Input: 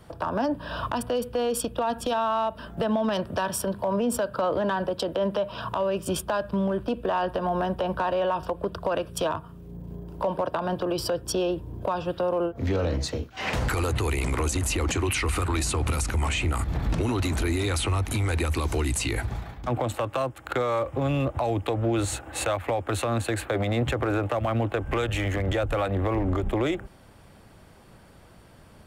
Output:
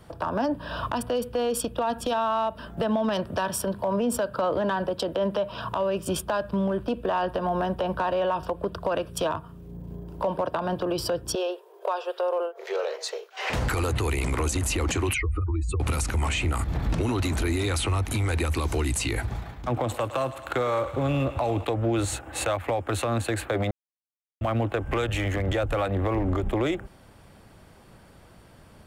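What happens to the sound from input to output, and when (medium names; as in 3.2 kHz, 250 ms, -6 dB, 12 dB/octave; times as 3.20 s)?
11.35–13.50 s: brick-wall FIR high-pass 360 Hz
15.14–15.80 s: spectral contrast enhancement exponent 2.5
19.37–21.65 s: thinning echo 107 ms, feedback 82%, level -13.5 dB
23.71–24.41 s: mute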